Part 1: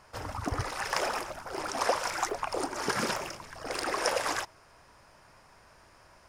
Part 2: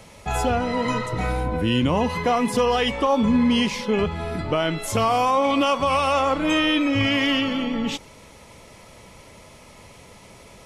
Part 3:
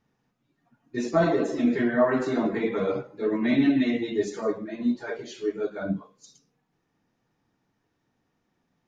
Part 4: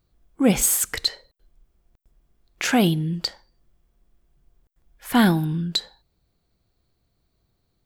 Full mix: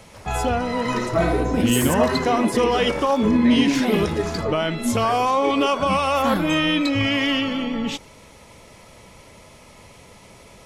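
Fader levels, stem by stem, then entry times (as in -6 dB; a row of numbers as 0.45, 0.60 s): -7.5, 0.0, +0.5, -7.5 dB; 0.00, 0.00, 0.00, 1.10 s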